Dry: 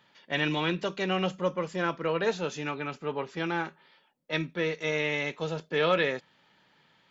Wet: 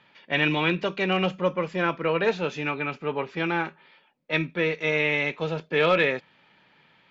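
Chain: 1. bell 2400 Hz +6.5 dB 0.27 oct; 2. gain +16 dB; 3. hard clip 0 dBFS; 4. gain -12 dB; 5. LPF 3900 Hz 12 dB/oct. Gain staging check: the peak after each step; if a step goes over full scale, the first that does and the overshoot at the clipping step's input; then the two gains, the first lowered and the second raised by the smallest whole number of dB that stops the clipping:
-11.5, +4.5, 0.0, -12.0, -11.5 dBFS; step 2, 4.5 dB; step 2 +11 dB, step 4 -7 dB

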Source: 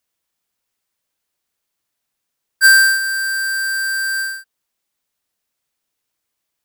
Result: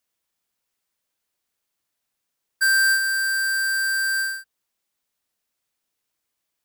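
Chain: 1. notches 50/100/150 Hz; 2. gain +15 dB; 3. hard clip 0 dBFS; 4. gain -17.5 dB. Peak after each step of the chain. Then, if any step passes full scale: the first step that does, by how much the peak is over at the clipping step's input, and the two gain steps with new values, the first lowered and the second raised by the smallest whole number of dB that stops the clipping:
-6.5, +8.5, 0.0, -17.5 dBFS; step 2, 8.5 dB; step 2 +6 dB, step 4 -8.5 dB

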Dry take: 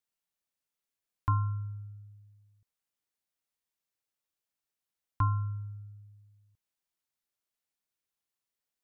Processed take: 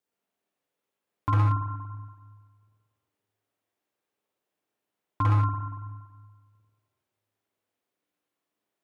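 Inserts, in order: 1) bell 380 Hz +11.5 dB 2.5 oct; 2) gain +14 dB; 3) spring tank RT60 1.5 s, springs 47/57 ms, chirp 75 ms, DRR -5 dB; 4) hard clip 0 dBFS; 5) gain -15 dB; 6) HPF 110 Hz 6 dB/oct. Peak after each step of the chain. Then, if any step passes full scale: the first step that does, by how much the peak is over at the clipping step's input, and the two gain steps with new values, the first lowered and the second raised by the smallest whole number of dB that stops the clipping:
-12.0, +2.0, +5.5, 0.0, -15.0, -13.0 dBFS; step 2, 5.5 dB; step 2 +8 dB, step 5 -9 dB

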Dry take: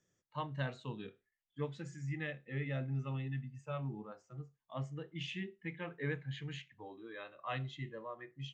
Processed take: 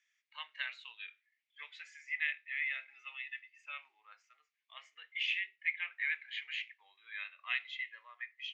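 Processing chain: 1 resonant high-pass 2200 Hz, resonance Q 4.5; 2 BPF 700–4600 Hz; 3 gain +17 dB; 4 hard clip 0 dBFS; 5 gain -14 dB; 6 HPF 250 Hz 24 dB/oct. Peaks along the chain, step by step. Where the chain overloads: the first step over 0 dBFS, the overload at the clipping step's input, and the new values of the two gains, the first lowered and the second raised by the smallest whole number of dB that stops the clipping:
-22.0, -22.5, -5.5, -5.5, -19.5, -20.0 dBFS; no overload

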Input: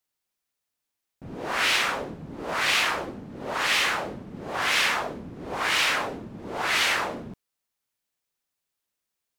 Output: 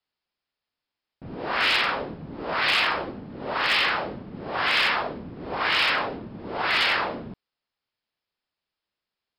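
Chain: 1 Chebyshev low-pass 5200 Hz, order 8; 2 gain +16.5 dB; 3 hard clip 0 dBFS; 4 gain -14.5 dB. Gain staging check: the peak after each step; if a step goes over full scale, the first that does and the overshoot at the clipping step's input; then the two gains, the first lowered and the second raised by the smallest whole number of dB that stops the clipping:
-11.5, +5.0, 0.0, -14.5 dBFS; step 2, 5.0 dB; step 2 +11.5 dB, step 4 -9.5 dB

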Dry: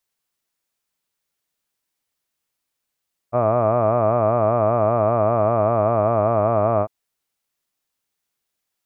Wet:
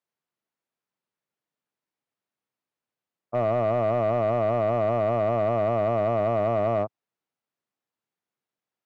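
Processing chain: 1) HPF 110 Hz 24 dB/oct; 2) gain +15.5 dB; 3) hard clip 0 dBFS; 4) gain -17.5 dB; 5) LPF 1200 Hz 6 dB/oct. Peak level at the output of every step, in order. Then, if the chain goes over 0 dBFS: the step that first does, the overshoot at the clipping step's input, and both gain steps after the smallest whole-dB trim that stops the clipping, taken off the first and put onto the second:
-8.5, +7.0, 0.0, -17.5, -17.5 dBFS; step 2, 7.0 dB; step 2 +8.5 dB, step 4 -10.5 dB

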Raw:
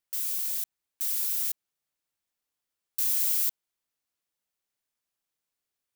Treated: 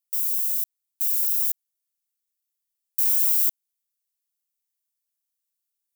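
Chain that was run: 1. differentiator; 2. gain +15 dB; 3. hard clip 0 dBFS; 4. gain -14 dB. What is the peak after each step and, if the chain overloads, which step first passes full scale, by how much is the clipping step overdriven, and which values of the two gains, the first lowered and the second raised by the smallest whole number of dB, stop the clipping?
-9.0, +6.0, 0.0, -14.0 dBFS; step 2, 6.0 dB; step 2 +9 dB, step 4 -8 dB

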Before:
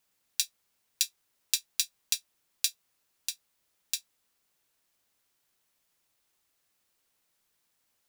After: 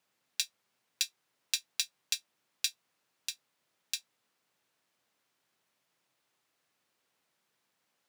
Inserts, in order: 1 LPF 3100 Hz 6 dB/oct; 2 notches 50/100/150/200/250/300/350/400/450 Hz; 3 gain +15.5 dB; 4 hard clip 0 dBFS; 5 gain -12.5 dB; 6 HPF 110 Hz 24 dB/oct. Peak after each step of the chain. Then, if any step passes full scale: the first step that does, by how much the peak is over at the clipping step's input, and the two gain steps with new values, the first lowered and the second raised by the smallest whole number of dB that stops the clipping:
-11.0, -11.0, +4.5, 0.0, -12.5, -12.0 dBFS; step 3, 4.5 dB; step 3 +10.5 dB, step 5 -7.5 dB

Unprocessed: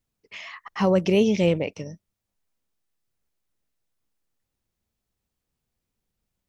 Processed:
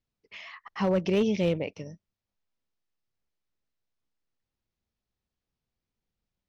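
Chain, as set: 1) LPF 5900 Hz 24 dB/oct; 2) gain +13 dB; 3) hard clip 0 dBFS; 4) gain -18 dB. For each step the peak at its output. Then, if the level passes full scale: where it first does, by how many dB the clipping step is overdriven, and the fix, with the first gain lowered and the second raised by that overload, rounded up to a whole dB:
-9.0, +4.0, 0.0, -18.0 dBFS; step 2, 4.0 dB; step 2 +9 dB, step 4 -14 dB

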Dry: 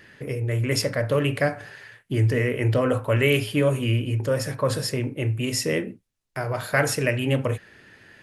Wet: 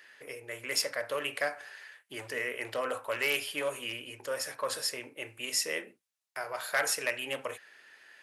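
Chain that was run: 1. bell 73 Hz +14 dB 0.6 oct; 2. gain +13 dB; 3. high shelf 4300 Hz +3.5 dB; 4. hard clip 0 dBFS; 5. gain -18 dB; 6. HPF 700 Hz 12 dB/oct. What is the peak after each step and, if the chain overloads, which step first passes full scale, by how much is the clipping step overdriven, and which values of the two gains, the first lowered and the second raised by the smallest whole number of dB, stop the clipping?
-7.5, +5.5, +6.0, 0.0, -18.0, -14.0 dBFS; step 2, 6.0 dB; step 2 +7 dB, step 5 -12 dB

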